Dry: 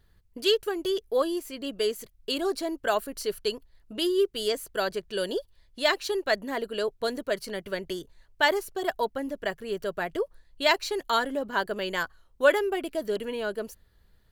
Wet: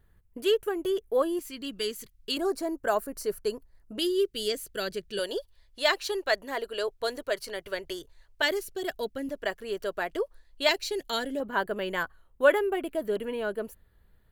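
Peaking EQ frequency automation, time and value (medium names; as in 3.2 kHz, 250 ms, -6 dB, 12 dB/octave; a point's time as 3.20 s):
peaking EQ -13 dB 1 oct
4.6 kHz
from 1.39 s 620 Hz
from 2.37 s 3.4 kHz
from 3.99 s 890 Hz
from 5.19 s 200 Hz
from 8.42 s 940 Hz
from 9.29 s 140 Hz
from 10.69 s 1.1 kHz
from 11.40 s 5.3 kHz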